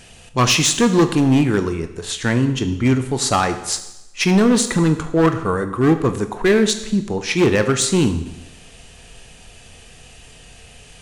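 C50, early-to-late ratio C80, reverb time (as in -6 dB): 11.5 dB, 13.0 dB, 0.90 s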